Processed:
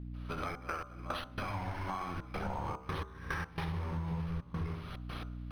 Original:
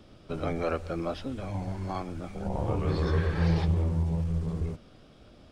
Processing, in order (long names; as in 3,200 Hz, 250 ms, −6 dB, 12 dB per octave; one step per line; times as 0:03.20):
fade in at the beginning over 1.22 s
flat-topped bell 1,900 Hz +14.5 dB 2.5 octaves
flutter between parallel walls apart 11.5 metres, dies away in 0.51 s
brickwall limiter −17.5 dBFS, peak gain reduction 7 dB
gate pattern ".xxx.x..x.xxxxxx" 109 BPM −24 dB
mains hum 60 Hz, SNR 18 dB
downward compressor 8 to 1, threshold −41 dBFS, peak gain reduction 18 dB
background noise violet −71 dBFS
high-frequency loss of the air 59 metres
hum removal 64.36 Hz, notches 24
linearly interpolated sample-rate reduction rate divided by 6×
level +7 dB